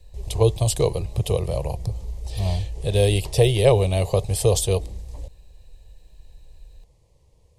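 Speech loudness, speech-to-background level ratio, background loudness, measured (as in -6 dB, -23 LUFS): -22.0 LUFS, 14.5 dB, -36.5 LUFS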